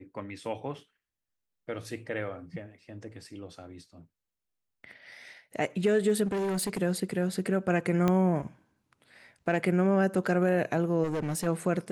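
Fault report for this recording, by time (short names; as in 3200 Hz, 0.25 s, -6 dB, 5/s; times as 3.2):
6.26–6.78 clipped -27 dBFS
8.08 pop -14 dBFS
11.03–11.47 clipped -27.5 dBFS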